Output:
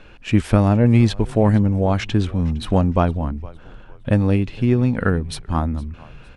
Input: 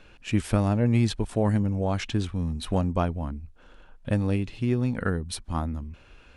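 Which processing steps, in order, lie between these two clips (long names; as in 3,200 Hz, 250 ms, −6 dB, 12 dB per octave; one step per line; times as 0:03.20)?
high-shelf EQ 5,100 Hz −10 dB
echo with shifted repeats 461 ms, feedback 34%, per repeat −100 Hz, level −21 dB
level +8 dB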